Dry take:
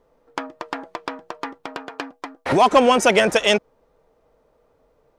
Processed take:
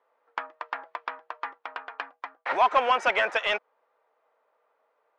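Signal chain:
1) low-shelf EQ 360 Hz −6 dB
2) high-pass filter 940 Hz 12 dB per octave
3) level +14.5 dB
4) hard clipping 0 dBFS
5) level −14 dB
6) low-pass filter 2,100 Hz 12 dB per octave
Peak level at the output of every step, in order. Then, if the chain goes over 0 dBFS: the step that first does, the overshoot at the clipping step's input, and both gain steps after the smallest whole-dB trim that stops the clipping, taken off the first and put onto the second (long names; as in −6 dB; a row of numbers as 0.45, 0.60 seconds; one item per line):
−5.0, −5.5, +9.0, 0.0, −14.0, −13.5 dBFS
step 3, 9.0 dB
step 3 +5.5 dB, step 5 −5 dB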